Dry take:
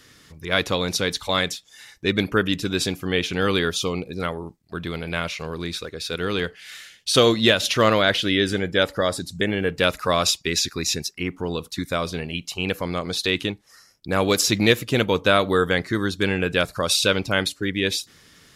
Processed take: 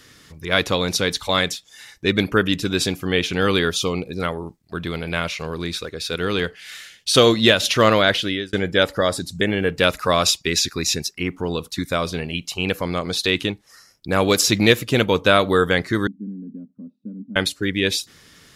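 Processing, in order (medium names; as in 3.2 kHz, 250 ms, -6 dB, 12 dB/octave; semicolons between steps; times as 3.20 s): 7.97–8.53 s: fade out equal-power; 16.07–17.36 s: Butterworth band-pass 230 Hz, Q 4; trim +2.5 dB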